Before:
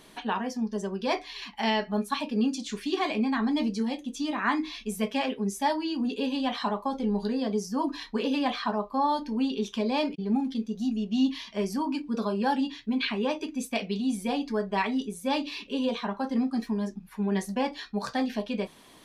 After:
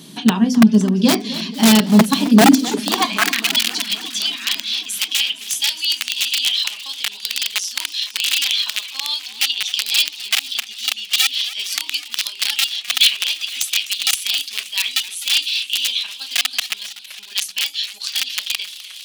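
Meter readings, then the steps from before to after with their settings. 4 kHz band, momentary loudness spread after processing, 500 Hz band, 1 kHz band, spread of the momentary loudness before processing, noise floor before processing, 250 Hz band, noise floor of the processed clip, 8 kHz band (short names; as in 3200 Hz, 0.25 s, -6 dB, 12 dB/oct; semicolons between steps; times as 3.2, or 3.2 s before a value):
+21.0 dB, 10 LU, +2.5 dB, +3.5 dB, 5 LU, -52 dBFS, +8.0 dB, -37 dBFS, +22.5 dB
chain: band shelf 1000 Hz -11.5 dB 2.8 oct; notches 50/100/150/200/250/300/350/400 Hz; in parallel at +1 dB: level quantiser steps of 17 dB; on the sum: wrapped overs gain 19 dB; high-pass sweep 160 Hz -> 2900 Hz, 2.34–3.48; crackle 25/s -57 dBFS; on a send: thin delay 0.46 s, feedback 50%, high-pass 2400 Hz, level -19.5 dB; on the sum: maximiser +13 dB; warbling echo 0.259 s, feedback 70%, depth 194 cents, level -16 dB; gain -1 dB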